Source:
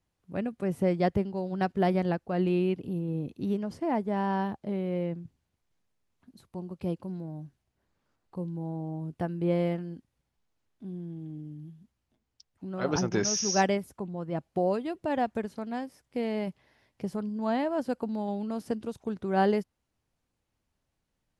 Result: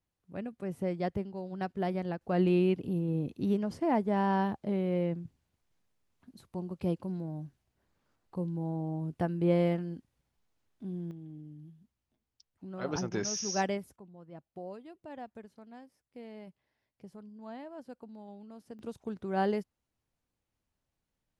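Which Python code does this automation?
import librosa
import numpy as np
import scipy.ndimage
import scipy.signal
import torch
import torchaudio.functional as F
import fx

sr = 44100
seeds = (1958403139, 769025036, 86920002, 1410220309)

y = fx.gain(x, sr, db=fx.steps((0.0, -7.0), (2.21, 0.5), (11.11, -6.0), (13.96, -16.0), (18.79, -5.0)))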